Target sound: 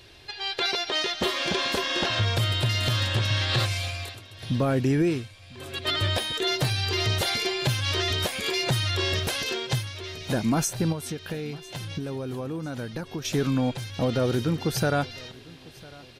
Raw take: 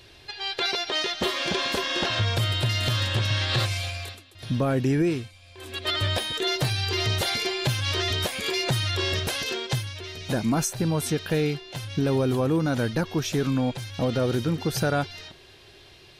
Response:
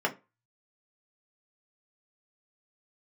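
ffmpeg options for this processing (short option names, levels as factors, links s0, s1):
-filter_complex "[0:a]asettb=1/sr,asplit=3[s0][s1][s2];[s0]atrim=end=10.924[s3];[s1]atrim=start=10.92:end=13.25,asetpts=PTS-STARTPTS,afade=t=in:d=0.004:c=qsin,afade=t=out:st=2.326:d=0.004:c=qsin,acompressor=threshold=0.0316:ratio=6[s4];[s2]atrim=start=13.246[s5];[s3][s4]acrossfade=d=0.004:c1=hsin:c2=qsin[s6];[s6][s5]acrossfade=d=0.004:c1=qsin:c2=hsin,aecho=1:1:1001|2002|3003:0.075|0.033|0.0145"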